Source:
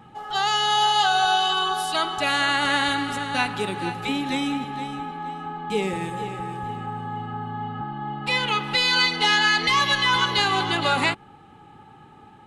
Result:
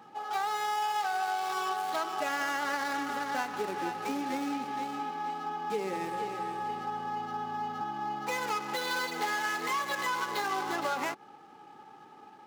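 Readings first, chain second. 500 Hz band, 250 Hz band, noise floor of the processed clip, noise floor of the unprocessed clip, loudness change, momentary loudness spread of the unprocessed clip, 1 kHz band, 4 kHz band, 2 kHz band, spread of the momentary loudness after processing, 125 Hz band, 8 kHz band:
−6.5 dB, −9.0 dB, −53 dBFS, −49 dBFS, −10.5 dB, 13 LU, −7.5 dB, −18.5 dB, −11.5 dB, 5 LU, −17.5 dB, −8.0 dB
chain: running median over 15 samples
high-pass filter 330 Hz 12 dB per octave
downward compressor, threshold −27 dBFS, peak gain reduction 9 dB
level −1.5 dB

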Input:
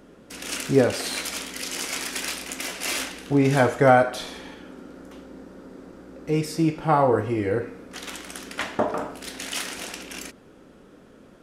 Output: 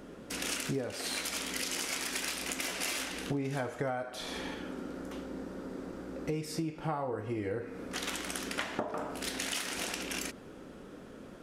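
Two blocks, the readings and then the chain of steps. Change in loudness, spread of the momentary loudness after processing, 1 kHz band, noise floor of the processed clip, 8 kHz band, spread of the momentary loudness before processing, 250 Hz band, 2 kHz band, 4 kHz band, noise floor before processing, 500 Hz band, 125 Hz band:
−11.5 dB, 9 LU, −14.5 dB, −49 dBFS, −4.5 dB, 24 LU, −11.0 dB, −8.0 dB, −5.0 dB, −51 dBFS, −14.0 dB, −12.5 dB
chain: downward compressor 12 to 1, threshold −33 dBFS, peak gain reduction 22.5 dB
level +1.5 dB

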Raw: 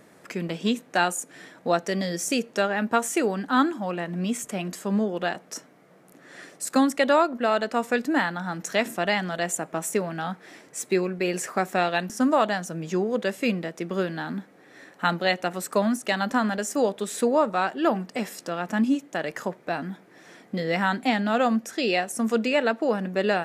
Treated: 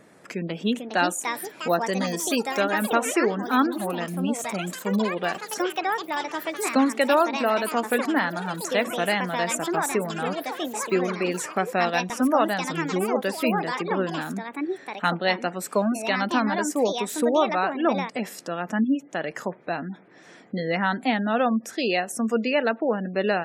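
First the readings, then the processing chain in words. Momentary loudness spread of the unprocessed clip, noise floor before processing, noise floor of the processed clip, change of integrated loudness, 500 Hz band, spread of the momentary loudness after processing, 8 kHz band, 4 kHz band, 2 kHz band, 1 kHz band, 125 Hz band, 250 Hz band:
10 LU, −54 dBFS, −49 dBFS, +0.5 dB, +0.5 dB, 8 LU, +0.5 dB, +1.0 dB, +1.0 dB, +1.5 dB, 0.0 dB, +0.5 dB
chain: gate on every frequency bin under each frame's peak −30 dB strong
delay with pitch and tempo change per echo 535 ms, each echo +5 semitones, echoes 3, each echo −6 dB

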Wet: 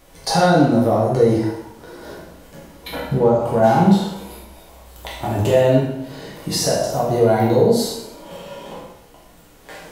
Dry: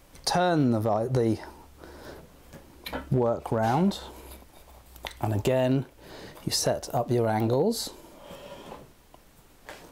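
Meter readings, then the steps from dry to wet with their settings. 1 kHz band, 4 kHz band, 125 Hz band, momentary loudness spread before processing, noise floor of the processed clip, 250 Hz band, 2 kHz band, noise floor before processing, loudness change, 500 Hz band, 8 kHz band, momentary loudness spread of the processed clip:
+9.5 dB, +6.5 dB, +8.0 dB, 21 LU, −48 dBFS, +9.0 dB, +8.5 dB, −56 dBFS, +9.5 dB, +10.5 dB, +7.0 dB, 21 LU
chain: dense smooth reverb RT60 0.85 s, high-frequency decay 0.85×, DRR −4.5 dB
harmonic and percussive parts rebalanced harmonic +6 dB
level −1.5 dB

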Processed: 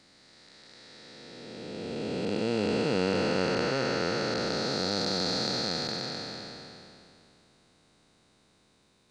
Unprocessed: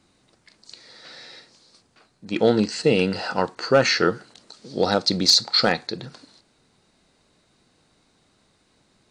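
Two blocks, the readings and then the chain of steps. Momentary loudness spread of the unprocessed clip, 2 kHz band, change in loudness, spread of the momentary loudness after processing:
16 LU, −7.5 dB, −9.0 dB, 18 LU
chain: spectrum smeared in time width 1,350 ms

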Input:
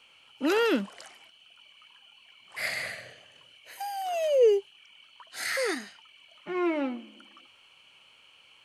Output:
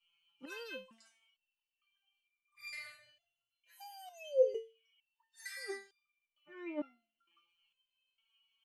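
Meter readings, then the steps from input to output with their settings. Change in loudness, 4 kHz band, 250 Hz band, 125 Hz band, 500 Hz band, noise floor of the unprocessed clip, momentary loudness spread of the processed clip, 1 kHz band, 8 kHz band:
−11.5 dB, −15.5 dB, −17.5 dB, can't be measured, −11.0 dB, −59 dBFS, 22 LU, −20.5 dB, −15.0 dB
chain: spectral dynamics exaggerated over time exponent 1.5
step-sequenced resonator 2.2 Hz 170–1,200 Hz
level +4.5 dB

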